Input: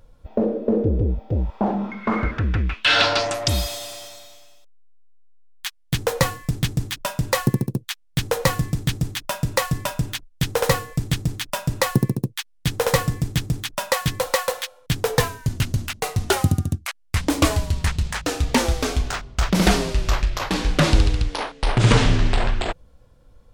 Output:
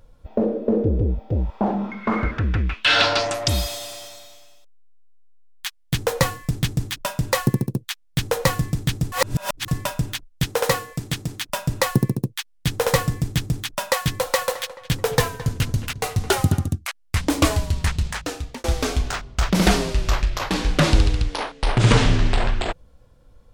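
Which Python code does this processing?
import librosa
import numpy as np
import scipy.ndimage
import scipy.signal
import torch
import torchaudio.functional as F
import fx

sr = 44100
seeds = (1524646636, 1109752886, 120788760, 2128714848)

y = fx.low_shelf(x, sr, hz=120.0, db=-11.5, at=(10.45, 11.5))
y = fx.echo_filtered(y, sr, ms=216, feedback_pct=52, hz=3200.0, wet_db=-15.0, at=(14.16, 16.68))
y = fx.edit(y, sr, fx.reverse_span(start_s=9.12, length_s=0.56),
    fx.fade_out_span(start_s=18.06, length_s=0.58), tone=tone)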